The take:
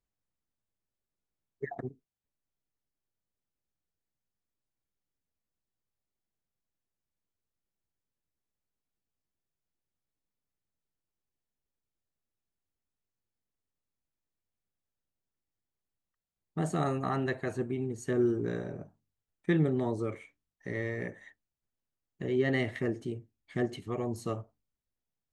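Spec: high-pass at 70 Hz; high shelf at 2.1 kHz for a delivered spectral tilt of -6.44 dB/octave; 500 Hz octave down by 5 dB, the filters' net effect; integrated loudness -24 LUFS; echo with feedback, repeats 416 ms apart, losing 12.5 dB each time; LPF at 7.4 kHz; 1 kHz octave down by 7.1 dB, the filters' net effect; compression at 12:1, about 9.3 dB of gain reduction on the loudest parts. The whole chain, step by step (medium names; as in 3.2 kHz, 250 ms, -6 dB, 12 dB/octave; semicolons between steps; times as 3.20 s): high-pass 70 Hz; low-pass 7.4 kHz; peaking EQ 500 Hz -6 dB; peaking EQ 1 kHz -6 dB; treble shelf 2.1 kHz -7.5 dB; compression 12:1, threshold -33 dBFS; feedback delay 416 ms, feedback 24%, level -12.5 dB; trim +17 dB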